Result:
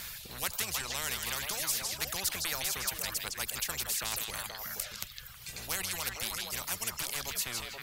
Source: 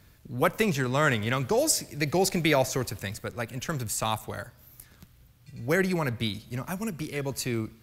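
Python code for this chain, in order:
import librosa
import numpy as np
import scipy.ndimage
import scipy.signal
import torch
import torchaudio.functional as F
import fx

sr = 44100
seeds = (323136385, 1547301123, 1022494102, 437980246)

y = fx.octave_divider(x, sr, octaves=1, level_db=-4.0)
y = fx.tone_stack(y, sr, knobs='10-0-10')
y = fx.dereverb_blind(y, sr, rt60_s=1.0)
y = fx.echo_stepped(y, sr, ms=159, hz=3700.0, octaves=-1.4, feedback_pct=70, wet_db=-3.5)
y = fx.spectral_comp(y, sr, ratio=4.0)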